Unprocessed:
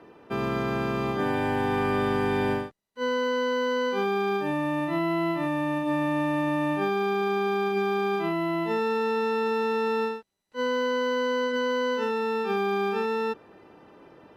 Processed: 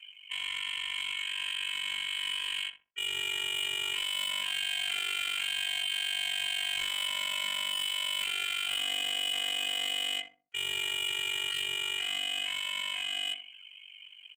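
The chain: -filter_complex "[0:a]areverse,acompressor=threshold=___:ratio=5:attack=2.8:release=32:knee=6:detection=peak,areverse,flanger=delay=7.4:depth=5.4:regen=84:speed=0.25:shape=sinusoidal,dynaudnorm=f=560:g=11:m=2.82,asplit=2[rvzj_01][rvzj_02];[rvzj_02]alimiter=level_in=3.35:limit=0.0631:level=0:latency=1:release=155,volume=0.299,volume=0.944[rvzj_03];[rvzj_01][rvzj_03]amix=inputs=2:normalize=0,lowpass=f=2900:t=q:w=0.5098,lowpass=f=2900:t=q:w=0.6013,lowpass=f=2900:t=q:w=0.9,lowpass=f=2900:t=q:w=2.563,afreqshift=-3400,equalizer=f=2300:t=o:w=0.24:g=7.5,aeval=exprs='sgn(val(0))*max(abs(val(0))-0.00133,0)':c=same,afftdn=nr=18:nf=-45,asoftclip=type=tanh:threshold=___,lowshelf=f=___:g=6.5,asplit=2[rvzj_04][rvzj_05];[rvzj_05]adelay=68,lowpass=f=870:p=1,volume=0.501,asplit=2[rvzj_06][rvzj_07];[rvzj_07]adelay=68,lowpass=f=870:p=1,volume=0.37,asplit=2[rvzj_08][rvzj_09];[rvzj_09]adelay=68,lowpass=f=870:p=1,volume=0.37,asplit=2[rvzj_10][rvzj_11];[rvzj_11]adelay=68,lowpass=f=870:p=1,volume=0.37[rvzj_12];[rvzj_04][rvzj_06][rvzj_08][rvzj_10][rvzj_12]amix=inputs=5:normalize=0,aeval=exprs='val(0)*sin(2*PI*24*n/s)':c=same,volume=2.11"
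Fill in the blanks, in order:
0.0141, 0.02, 79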